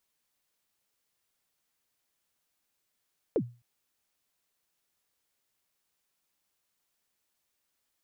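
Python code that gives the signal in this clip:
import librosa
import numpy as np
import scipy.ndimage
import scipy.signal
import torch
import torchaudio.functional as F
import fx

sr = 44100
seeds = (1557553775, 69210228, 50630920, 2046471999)

y = fx.drum_kick(sr, seeds[0], length_s=0.26, level_db=-20, start_hz=530.0, end_hz=120.0, sweep_ms=66.0, decay_s=0.32, click=False)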